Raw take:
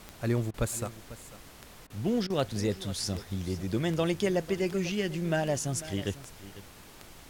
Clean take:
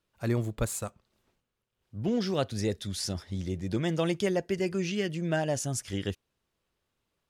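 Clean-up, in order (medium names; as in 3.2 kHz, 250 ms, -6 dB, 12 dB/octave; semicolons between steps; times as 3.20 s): de-click; interpolate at 0.51/1.87/2.27 s, 29 ms; noise print and reduce 30 dB; inverse comb 496 ms -16 dB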